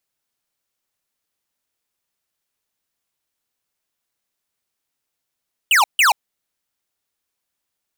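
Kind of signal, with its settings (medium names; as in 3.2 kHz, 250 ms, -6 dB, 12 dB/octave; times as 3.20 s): burst of laser zaps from 3.1 kHz, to 750 Hz, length 0.13 s square, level -13 dB, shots 2, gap 0.15 s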